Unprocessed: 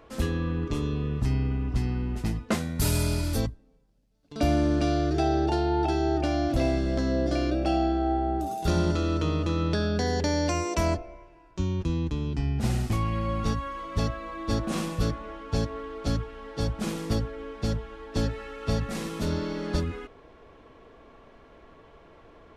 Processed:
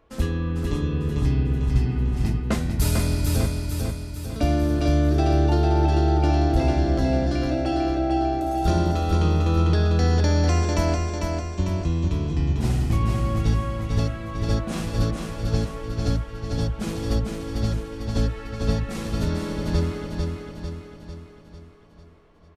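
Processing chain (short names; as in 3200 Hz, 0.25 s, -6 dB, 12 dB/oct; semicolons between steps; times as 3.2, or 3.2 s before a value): gate -48 dBFS, range -9 dB; low shelf 110 Hz +6.5 dB; feedback echo 0.448 s, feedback 52%, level -4 dB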